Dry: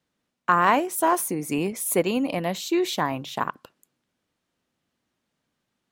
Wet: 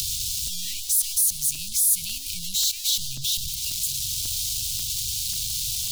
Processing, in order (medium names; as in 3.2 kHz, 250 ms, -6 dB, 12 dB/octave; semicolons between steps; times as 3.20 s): jump at every zero crossing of -20 dBFS; inverse Chebyshev band-stop 370–1200 Hz, stop band 70 dB; spectral gate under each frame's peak -30 dB strong; peaking EQ 170 Hz -8 dB 2.5 oct; in parallel at -2.5 dB: peak limiter -22.5 dBFS, peak gain reduction 11 dB; on the sum: upward compressor, threshold -28 dBFS; on a send: thinning echo 119 ms, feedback 71%, high-pass 420 Hz, level -22 dB; on the sum: crackling interface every 0.54 s, samples 128, repeat, from 0.47 s; endings held to a fixed fall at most 540 dB/s